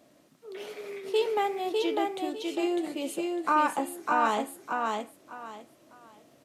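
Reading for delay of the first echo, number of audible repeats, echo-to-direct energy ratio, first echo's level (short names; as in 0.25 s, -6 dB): 0.602 s, 3, -2.5 dB, -3.0 dB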